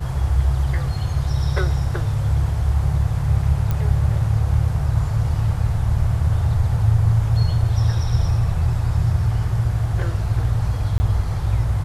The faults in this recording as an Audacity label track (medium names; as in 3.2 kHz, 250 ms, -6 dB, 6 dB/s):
3.710000	3.710000	pop -11 dBFS
10.980000	11.000000	dropout 20 ms